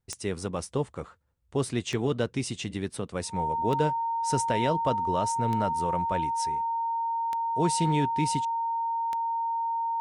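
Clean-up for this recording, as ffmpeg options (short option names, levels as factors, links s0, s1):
-af "adeclick=t=4,bandreject=f=920:w=30"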